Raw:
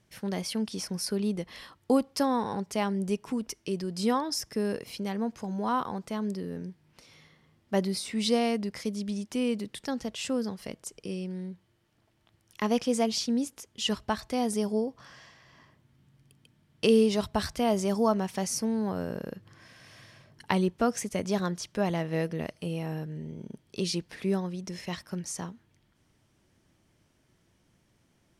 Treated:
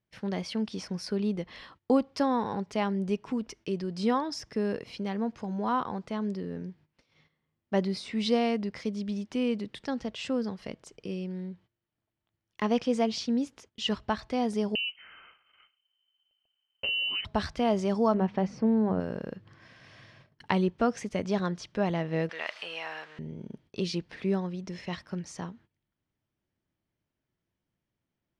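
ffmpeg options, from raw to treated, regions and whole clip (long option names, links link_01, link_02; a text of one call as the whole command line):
ffmpeg -i in.wav -filter_complex "[0:a]asettb=1/sr,asplit=3[link_01][link_02][link_03];[link_01]atrim=end=14.754[link_04];[link_02]atrim=start=14.75:end=17.25,asetpts=PTS-STARTPTS,afade=type=in:duration=0.004:curve=qsin,afade=type=out:start_time=2.496:duration=0.004:curve=qsin,lowshelf=frequency=370:gain=4,acompressor=threshold=-26dB:ratio=6:attack=3.2:release=140:knee=1:detection=peak,lowpass=frequency=2700:width_type=q:width=0.5098,lowpass=frequency=2700:width_type=q:width=0.6013,lowpass=frequency=2700:width_type=q:width=0.9,lowpass=frequency=2700:width_type=q:width=2.563,afreqshift=-3200[link_05];[link_03]atrim=start=17.246[link_06];[link_04][link_05]acrossfade=duration=0.004:curve1=hsin:curve2=qsin[link_07];[link_07][link_06]acrossfade=duration=0.004:curve1=qsin:curve2=hsin,asettb=1/sr,asplit=3[link_08][link_09][link_10];[link_08]atrim=end=18.144[link_11];[link_09]atrim=start=18.14:end=19,asetpts=PTS-STARTPTS,afade=type=in:duration=0.004:curve=qsin,afade=type=out:start_time=0.856:duration=0.004:curve=qsin,lowpass=3400,tiltshelf=frequency=1300:gain=5,bandreject=frequency=50:width_type=h:width=6,bandreject=frequency=100:width_type=h:width=6,bandreject=frequency=150:width_type=h:width=6,bandreject=frequency=200:width_type=h:width=6[link_12];[link_10]atrim=start=18.996[link_13];[link_11][link_12]acrossfade=duration=0.004:curve1=hsin:curve2=qsin[link_14];[link_14][link_13]acrossfade=duration=0.004:curve1=qsin:curve2=hsin,asettb=1/sr,asplit=3[link_15][link_16][link_17];[link_15]atrim=end=22.294[link_18];[link_16]atrim=start=22.29:end=23.19,asetpts=PTS-STARTPTS,afade=type=in:duration=0.004:curve=qsin,afade=type=out:start_time=0.896:duration=0.004:curve=qsin,aeval=exprs='val(0)+0.5*0.00501*sgn(val(0))':channel_layout=same,highpass=880,equalizer=frequency=2100:width=0.36:gain=10[link_19];[link_17]atrim=start=23.186[link_20];[link_18][link_19]acrossfade=duration=0.004:curve1=hsin:curve2=qsin[link_21];[link_21][link_20]acrossfade=duration=0.004:curve1=qsin:curve2=hsin,lowpass=4200,agate=range=-17dB:threshold=-55dB:ratio=16:detection=peak" out.wav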